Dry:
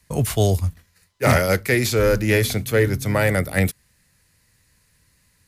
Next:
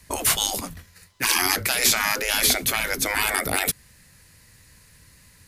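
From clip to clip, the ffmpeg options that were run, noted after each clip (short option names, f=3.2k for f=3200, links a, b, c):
-af "afftfilt=real='re*lt(hypot(re,im),0.141)':imag='im*lt(hypot(re,im),0.141)':win_size=1024:overlap=0.75,volume=8.5dB"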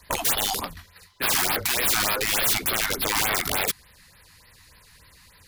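-af "equalizer=f=125:t=o:w=1:g=-5,equalizer=f=250:t=o:w=1:g=-4,equalizer=f=500:t=o:w=1:g=3,equalizer=f=1k:t=o:w=1:g=6,equalizer=f=4k:t=o:w=1:g=6,equalizer=f=8k:t=o:w=1:g=-4,aeval=exprs='(mod(5.96*val(0)+1,2)-1)/5.96':c=same,afftfilt=real='re*(1-between(b*sr/1024,440*pow(7700/440,0.5+0.5*sin(2*PI*3.4*pts/sr))/1.41,440*pow(7700/440,0.5+0.5*sin(2*PI*3.4*pts/sr))*1.41))':imag='im*(1-between(b*sr/1024,440*pow(7700/440,0.5+0.5*sin(2*PI*3.4*pts/sr))/1.41,440*pow(7700/440,0.5+0.5*sin(2*PI*3.4*pts/sr))*1.41))':win_size=1024:overlap=0.75"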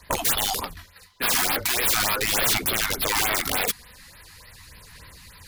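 -af "areverse,acompressor=mode=upward:threshold=-40dB:ratio=2.5,areverse,aphaser=in_gain=1:out_gain=1:delay=4.2:decay=0.31:speed=0.4:type=sinusoidal"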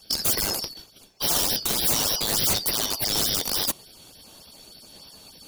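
-filter_complex "[0:a]afftfilt=real='real(if(lt(b,272),68*(eq(floor(b/68),0)*3+eq(floor(b/68),1)*2+eq(floor(b/68),2)*1+eq(floor(b/68),3)*0)+mod(b,68),b),0)':imag='imag(if(lt(b,272),68*(eq(floor(b/68),0)*3+eq(floor(b/68),1)*2+eq(floor(b/68),2)*1+eq(floor(b/68),3)*0)+mod(b,68),b),0)':win_size=2048:overlap=0.75,acrossover=split=100|1400|3000[a][b][c][d];[c]acrusher=samples=32:mix=1:aa=0.000001:lfo=1:lforange=32:lforate=1.3[e];[a][b][e][d]amix=inputs=4:normalize=0"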